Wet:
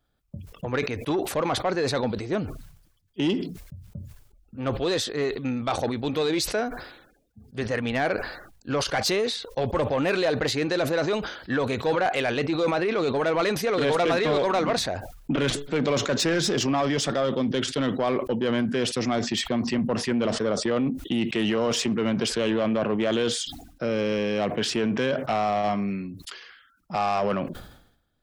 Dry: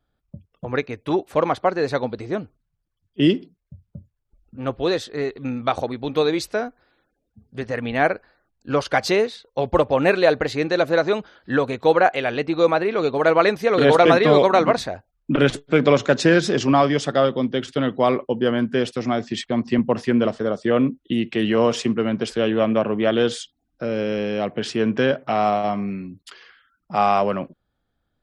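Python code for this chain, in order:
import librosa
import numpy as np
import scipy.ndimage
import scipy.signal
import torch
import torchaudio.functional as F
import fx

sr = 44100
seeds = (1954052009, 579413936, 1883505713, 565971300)

p1 = fx.high_shelf(x, sr, hz=3200.0, db=6.5)
p2 = fx.over_compress(p1, sr, threshold_db=-21.0, ratio=-0.5)
p3 = p1 + (p2 * librosa.db_to_amplitude(-3.0))
p4 = 10.0 ** (-9.5 / 20.0) * np.tanh(p3 / 10.0 ** (-9.5 / 20.0))
p5 = fx.sustainer(p4, sr, db_per_s=72.0)
y = p5 * librosa.db_to_amplitude(-7.0)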